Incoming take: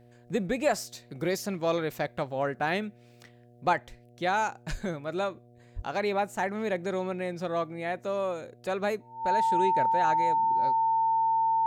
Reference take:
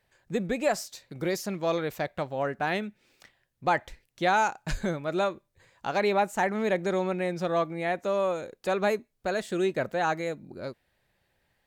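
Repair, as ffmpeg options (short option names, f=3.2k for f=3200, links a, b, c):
-filter_complex "[0:a]bandreject=f=120.1:t=h:w=4,bandreject=f=240.2:t=h:w=4,bandreject=f=360.3:t=h:w=4,bandreject=f=480.4:t=h:w=4,bandreject=f=600.5:t=h:w=4,bandreject=f=720.6:t=h:w=4,bandreject=f=900:w=30,asplit=3[a][b][c];[a]afade=t=out:st=5.75:d=0.02[d];[b]highpass=f=140:w=0.5412,highpass=f=140:w=1.3066,afade=t=in:st=5.75:d=0.02,afade=t=out:st=5.87:d=0.02[e];[c]afade=t=in:st=5.87:d=0.02[f];[d][e][f]amix=inputs=3:normalize=0,asetnsamples=n=441:p=0,asendcmd='3.73 volume volume 3.5dB',volume=0dB"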